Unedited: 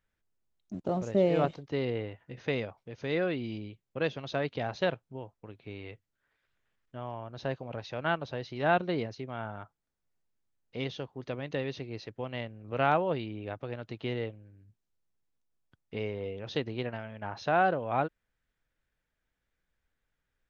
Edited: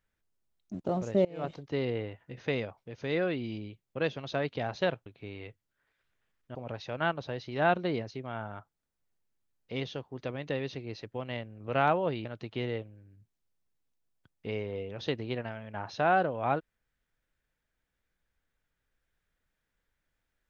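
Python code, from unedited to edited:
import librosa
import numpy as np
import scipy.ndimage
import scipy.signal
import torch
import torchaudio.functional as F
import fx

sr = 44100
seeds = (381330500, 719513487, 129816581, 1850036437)

y = fx.edit(x, sr, fx.fade_in_from(start_s=1.25, length_s=0.3, curve='qua', floor_db=-23.0),
    fx.cut(start_s=5.06, length_s=0.44),
    fx.cut(start_s=6.99, length_s=0.6),
    fx.cut(start_s=13.29, length_s=0.44), tone=tone)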